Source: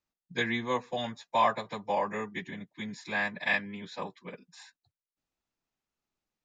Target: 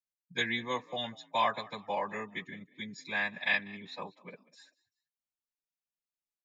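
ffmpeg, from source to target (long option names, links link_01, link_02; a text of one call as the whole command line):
ffmpeg -i in.wav -filter_complex "[0:a]afftdn=noise_reduction=15:noise_floor=-45,highshelf=frequency=2300:gain=11.5,asplit=3[link_01][link_02][link_03];[link_02]adelay=192,afreqshift=48,volume=-22dB[link_04];[link_03]adelay=384,afreqshift=96,volume=-31.6dB[link_05];[link_01][link_04][link_05]amix=inputs=3:normalize=0,volume=-5.5dB" out.wav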